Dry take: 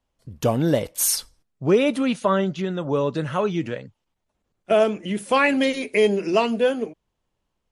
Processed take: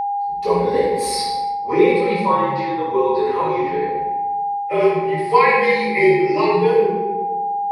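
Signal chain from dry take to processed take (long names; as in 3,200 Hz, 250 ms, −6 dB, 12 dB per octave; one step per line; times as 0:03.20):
EQ curve with evenly spaced ripples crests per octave 0.92, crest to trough 16 dB
rectangular room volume 590 cubic metres, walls mixed, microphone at 6.7 metres
frequency shifter −51 Hz
three-way crossover with the lows and the highs turned down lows −22 dB, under 240 Hz, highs −16 dB, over 5,600 Hz
steady tone 810 Hz −12 dBFS
reversed playback
upward compression, threshold −6 dBFS
reversed playback
level −11 dB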